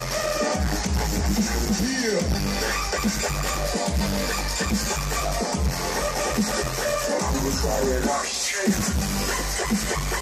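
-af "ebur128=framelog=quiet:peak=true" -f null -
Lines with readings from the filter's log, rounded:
Integrated loudness:
  I:         -24.0 LUFS
  Threshold: -34.0 LUFS
Loudness range:
  LRA:         1.0 LU
  Threshold: -44.1 LUFS
  LRA low:   -24.6 LUFS
  LRA high:  -23.6 LUFS
True peak:
  Peak:      -11.2 dBFS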